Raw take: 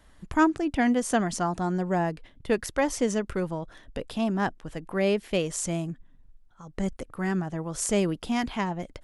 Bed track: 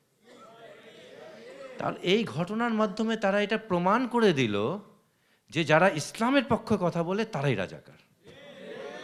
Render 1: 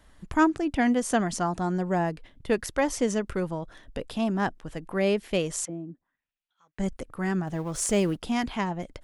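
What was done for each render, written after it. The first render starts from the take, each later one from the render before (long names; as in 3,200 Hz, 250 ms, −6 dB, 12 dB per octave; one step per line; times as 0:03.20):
0:05.65–0:06.79: envelope filter 280–3,900 Hz, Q 2.5, down, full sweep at −28.5 dBFS
0:07.47–0:08.17: mu-law and A-law mismatch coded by mu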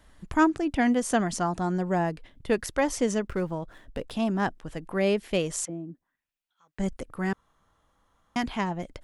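0:03.27–0:04.11: running median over 9 samples
0:07.33–0:08.36: fill with room tone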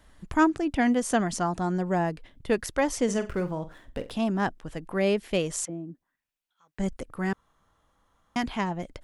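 0:03.04–0:04.12: flutter between parallel walls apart 7.7 metres, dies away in 0.24 s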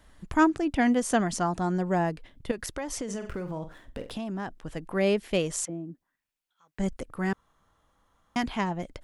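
0:02.51–0:04.69: downward compressor 12 to 1, threshold −29 dBFS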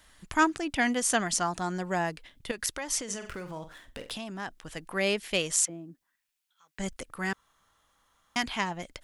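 tilt shelving filter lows −7 dB, about 1,100 Hz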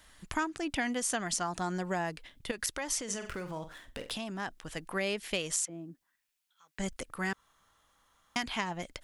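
downward compressor 6 to 1, threshold −29 dBFS, peak gain reduction 11 dB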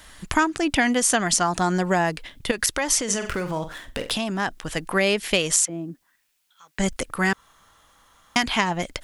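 level +12 dB
brickwall limiter −2 dBFS, peak gain reduction 1.5 dB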